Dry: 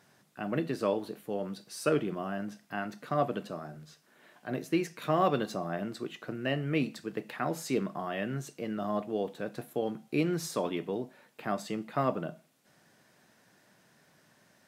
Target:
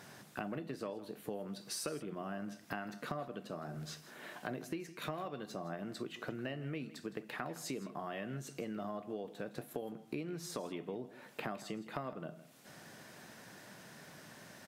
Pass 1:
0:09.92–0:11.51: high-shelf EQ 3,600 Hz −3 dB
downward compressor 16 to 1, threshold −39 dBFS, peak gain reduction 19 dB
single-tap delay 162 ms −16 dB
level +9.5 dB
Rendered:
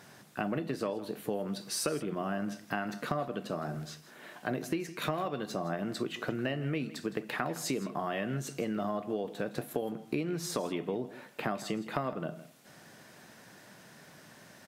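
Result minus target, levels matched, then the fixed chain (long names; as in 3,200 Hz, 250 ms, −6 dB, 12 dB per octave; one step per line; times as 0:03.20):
downward compressor: peak gain reduction −8 dB
0:09.92–0:11.51: high-shelf EQ 3,600 Hz −3 dB
downward compressor 16 to 1, threshold −47.5 dBFS, peak gain reduction 27 dB
single-tap delay 162 ms −16 dB
level +9.5 dB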